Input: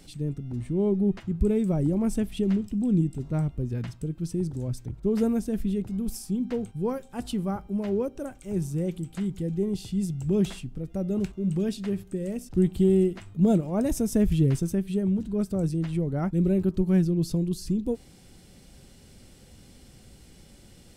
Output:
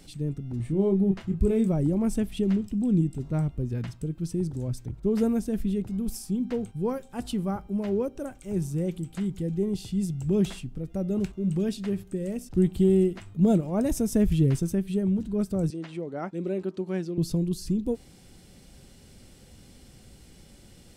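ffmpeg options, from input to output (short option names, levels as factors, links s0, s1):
-filter_complex "[0:a]asettb=1/sr,asplit=3[s0][s1][s2];[s0]atrim=end=0.574[s3];[s1]atrim=start=0.57:end=1.68,asetpts=PTS-STARTPTS,afade=t=in:d=0.004:c=qsin,afade=t=out:st=1.106:d=0.004:c=qsin,asplit=2[s4][s5];[s5]adelay=26,volume=0.501[s6];[s4][s6]amix=inputs=2:normalize=0,atrim=end_sample=48951[s7];[s2]atrim=start=1.676[s8];[s3][s7]acrossfade=d=0.004:c1=hsin:c2=qsin[s9];[s9][s8]acrossfade=d=0.004:c1=qsin:c2=hsin,asettb=1/sr,asplit=3[s10][s11][s12];[s10]atrim=end=15.704[s13];[s11]atrim=start=15.7:end=17.18,asetpts=PTS-STARTPTS,afade=t=in:d=0.004:c=qsin,afade=t=out:st=1.476:d=0.004:c=qsin,highpass=340,lowpass=6600[s14];[s12]atrim=start=17.176[s15];[s13][s14]acrossfade=d=0.004:c1=hsin:c2=qsin[s16];[s16][s15]acrossfade=d=0.004:c1=qsin:c2=hsin"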